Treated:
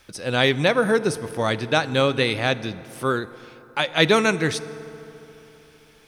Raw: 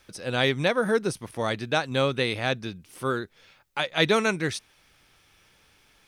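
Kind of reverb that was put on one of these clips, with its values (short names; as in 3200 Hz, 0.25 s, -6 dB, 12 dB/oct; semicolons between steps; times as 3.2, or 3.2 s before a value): FDN reverb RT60 3.4 s, high-frequency decay 0.5×, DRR 15 dB; gain +4.5 dB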